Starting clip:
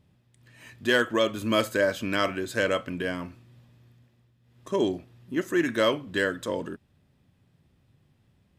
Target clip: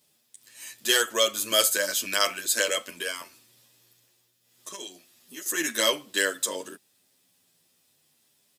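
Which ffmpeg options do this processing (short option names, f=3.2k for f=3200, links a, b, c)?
-filter_complex "[0:a]highpass=150,highshelf=f=2.8k:g=9,asettb=1/sr,asplit=3[a][b][c];[a]atrim=end=3.214[d];[b]atrim=start=3.21:end=5.46,asetpts=PTS-STARTPTS,afade=t=in:d=0.004:c=qsin,afade=t=out:st=2.246:d=0.004:c=qsin,acrossover=split=1300|3800[e][f][g];[e]acompressor=threshold=-39dB:ratio=4[h];[f]acompressor=threshold=-45dB:ratio=4[i];[g]acompressor=threshold=-50dB:ratio=4[j];[h][i][j]amix=inputs=3:normalize=0[k];[c]atrim=start=5.456[l];[d][k]acrossfade=d=0.004:c1=hsin:c2=qsin[m];[m][l]acrossfade=d=0.004:c1=qsin:c2=hsin,bass=f=250:g=-13,treble=f=4k:g=14,asplit=2[n][o];[o]adelay=9.7,afreqshift=-0.37[p];[n][p]amix=inputs=2:normalize=1"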